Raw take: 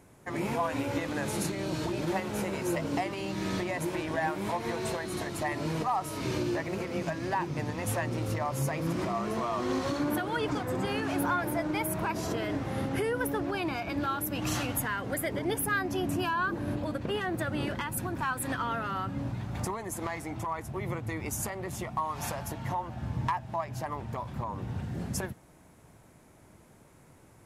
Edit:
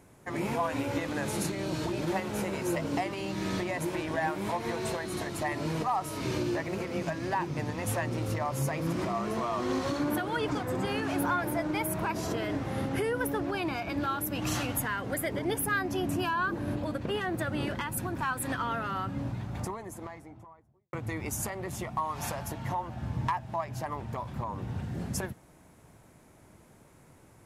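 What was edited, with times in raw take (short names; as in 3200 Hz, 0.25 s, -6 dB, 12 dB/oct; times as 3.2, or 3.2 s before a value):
19.17–20.93 studio fade out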